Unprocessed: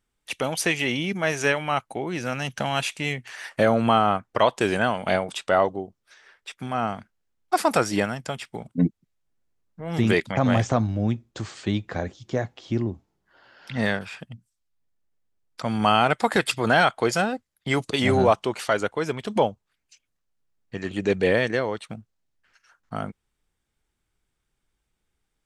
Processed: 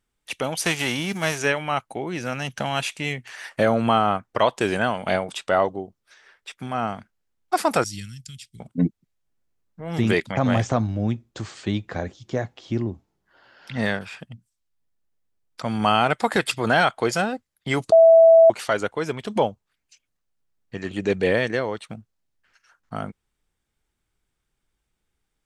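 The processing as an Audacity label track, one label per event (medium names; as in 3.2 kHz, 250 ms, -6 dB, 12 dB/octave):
0.640000	1.370000	formants flattened exponent 0.6
7.840000	8.600000	Chebyshev band-stop 110–4500 Hz
17.920000	18.500000	bleep 657 Hz -8 dBFS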